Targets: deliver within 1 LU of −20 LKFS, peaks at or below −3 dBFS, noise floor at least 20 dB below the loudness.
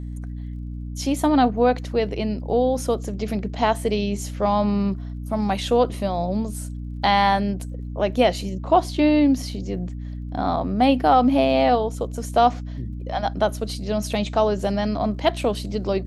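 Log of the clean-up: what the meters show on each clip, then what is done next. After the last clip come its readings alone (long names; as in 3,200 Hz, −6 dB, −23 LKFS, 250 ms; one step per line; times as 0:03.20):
crackle rate 36 per second; mains hum 60 Hz; hum harmonics up to 300 Hz; level of the hum −29 dBFS; integrated loudness −22.0 LKFS; sample peak −4.0 dBFS; target loudness −20.0 LKFS
→ click removal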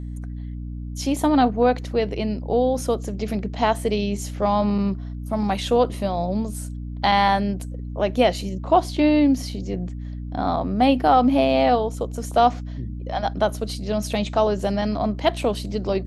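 crackle rate 0.062 per second; mains hum 60 Hz; hum harmonics up to 300 Hz; level of the hum −29 dBFS
→ mains-hum notches 60/120/180/240/300 Hz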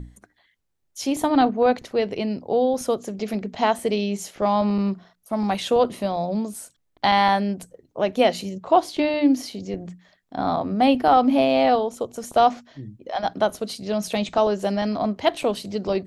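mains hum none found; integrated loudness −22.5 LKFS; sample peak −4.5 dBFS; target loudness −20.0 LKFS
→ level +2.5 dB
brickwall limiter −3 dBFS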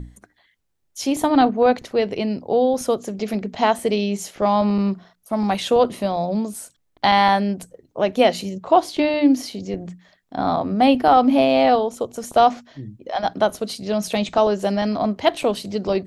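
integrated loudness −20.0 LKFS; sample peak −3.0 dBFS; background noise floor −67 dBFS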